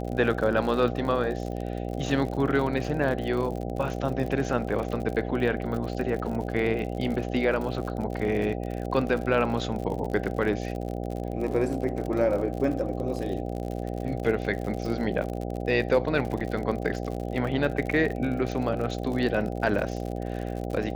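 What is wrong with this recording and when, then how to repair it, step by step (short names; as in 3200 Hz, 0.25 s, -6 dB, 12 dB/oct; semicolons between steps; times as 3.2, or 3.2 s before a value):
buzz 60 Hz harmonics 13 -32 dBFS
crackle 56/s -32 dBFS
16.4–16.41 gap 5.8 ms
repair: de-click; de-hum 60 Hz, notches 13; interpolate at 16.4, 5.8 ms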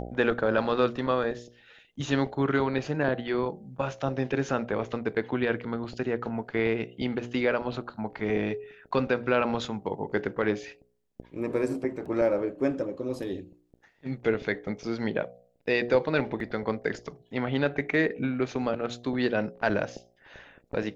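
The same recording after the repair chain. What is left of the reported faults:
none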